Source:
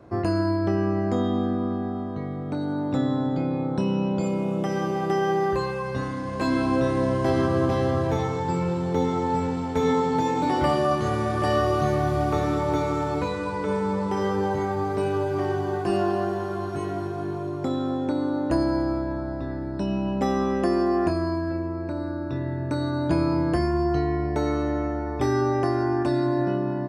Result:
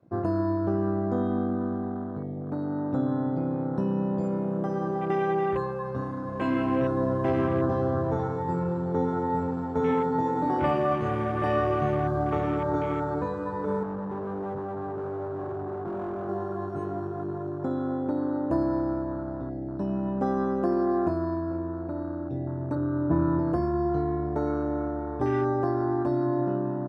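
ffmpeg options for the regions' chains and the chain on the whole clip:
ffmpeg -i in.wav -filter_complex "[0:a]asettb=1/sr,asplit=3[link_01][link_02][link_03];[link_01]atrim=end=13.834[link_04];[link_02]atrim=start=13.83:end=16.29,asetpts=PTS-STARTPTS,afade=type=in:duration=0.004:curve=qsin,afade=type=out:start_time=2.456:duration=0.004:curve=qsin,lowpass=1100,volume=28dB,asoftclip=hard,volume=-28dB[link_05];[link_03]atrim=start=16.286[link_06];[link_04][link_05]acrossfade=duration=0.004:curve1=hsin:curve2=qsin[link_07];[link_07][link_06]acrossfade=duration=0.004:curve1=qsin:curve2=hsin,asettb=1/sr,asplit=3[link_08][link_09][link_10];[link_08]atrim=end=22.754[link_11];[link_09]atrim=start=22.75:end=23.39,asetpts=PTS-STARTPTS,afade=type=in:duration=0.004:curve=qsin,afade=type=out:start_time=0.636:duration=0.004:curve=qsin,acrusher=bits=8:mode=log:mix=0:aa=0.000001,lowpass=1600,asplit=2[link_12][link_13];[link_13]adelay=13,volume=-3.5dB[link_14];[link_12][link_14]amix=inputs=2:normalize=0,atrim=end_sample=28224[link_15];[link_10]atrim=start=23.386[link_16];[link_11][link_15]acrossfade=duration=0.004:curve1=hsin:curve2=qsin[link_17];[link_17][link_16]acrossfade=duration=0.004:curve1=qsin:curve2=hsin,afwtdn=0.0224,highpass=78,volume=-2.5dB" out.wav

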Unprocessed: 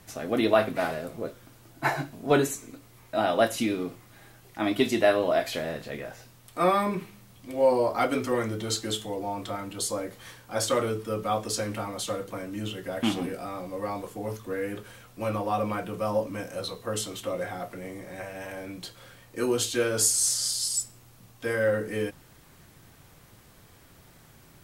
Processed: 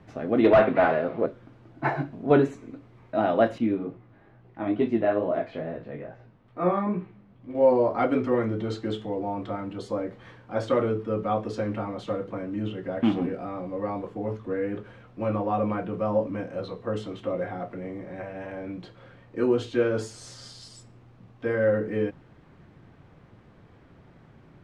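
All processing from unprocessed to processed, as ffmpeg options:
ffmpeg -i in.wav -filter_complex "[0:a]asettb=1/sr,asplit=3[link_01][link_02][link_03];[link_01]atrim=end=0.444[link_04];[link_02]atrim=start=0.44:end=1.26,asetpts=PTS-STARTPTS,afade=type=in:duration=0.004:curve=qsin,afade=type=out:start_time=0.816:duration=0.004:curve=qsin,lowpass=frequency=4900:width=0.5412,lowpass=frequency=4900:width=1.3066,asplit=2[link_05][link_06];[link_06]highpass=frequency=720:poles=1,volume=17dB,asoftclip=type=tanh:threshold=-8dB[link_07];[link_05][link_07]amix=inputs=2:normalize=0,lowpass=frequency=2600:poles=1,volume=-6dB,aeval=exprs='0.251*(abs(mod(val(0)/0.251+3,4)-2)-1)':channel_layout=same[link_08];[link_03]atrim=start=1.256[link_09];[link_04][link_08]acrossfade=duration=0.004:curve1=hsin:curve2=qsin[link_10];[link_10][link_09]acrossfade=duration=0.004:curve1=qsin:curve2=hsin,asettb=1/sr,asplit=3[link_11][link_12][link_13];[link_11]atrim=end=3.584[link_14];[link_12]atrim=start=3.58:end=7.55,asetpts=PTS-STARTPTS,afade=type=in:duration=0.004:curve=qsin,afade=type=out:start_time=3.966:duration=0.004:curve=qsin,aemphasis=mode=reproduction:type=75kf,flanger=delay=16:depth=4.8:speed=2.3[link_15];[link_13]atrim=start=7.546[link_16];[link_14][link_15]acrossfade=duration=0.004:curve1=hsin:curve2=qsin[link_17];[link_17][link_16]acrossfade=duration=0.004:curve1=qsin:curve2=hsin,lowpass=2400,equalizer=frequency=230:width=0.36:gain=7,volume=-2.5dB" out.wav

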